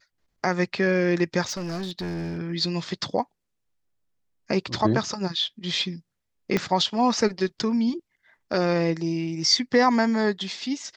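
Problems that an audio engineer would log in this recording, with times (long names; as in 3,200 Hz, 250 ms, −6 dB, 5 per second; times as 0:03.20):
0:01.44–0:02.39: clipping −27 dBFS
0:06.57: click −10 dBFS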